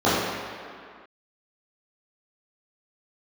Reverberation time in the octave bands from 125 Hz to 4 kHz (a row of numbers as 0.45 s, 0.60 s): 1.5 s, 2.0 s, 2.0 s, 2.3 s, no reading, 1.6 s